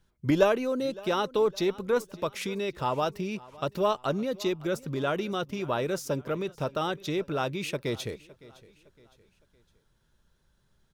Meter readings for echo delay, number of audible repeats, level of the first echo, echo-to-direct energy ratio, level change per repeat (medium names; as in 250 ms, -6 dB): 561 ms, 2, -21.0 dB, -20.0 dB, -8.0 dB